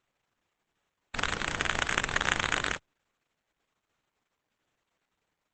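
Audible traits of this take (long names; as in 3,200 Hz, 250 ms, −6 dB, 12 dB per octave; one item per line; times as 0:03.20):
aliases and images of a low sample rate 5,100 Hz, jitter 20%
Opus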